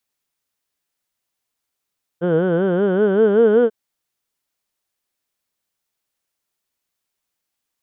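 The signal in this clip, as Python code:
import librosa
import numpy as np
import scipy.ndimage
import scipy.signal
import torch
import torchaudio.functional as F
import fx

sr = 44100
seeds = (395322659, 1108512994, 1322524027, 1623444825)

y = fx.formant_vowel(sr, seeds[0], length_s=1.49, hz=165.0, glide_st=6.0, vibrato_hz=5.2, vibrato_st=1.3, f1_hz=460.0, f2_hz=1500.0, f3_hz=3100.0)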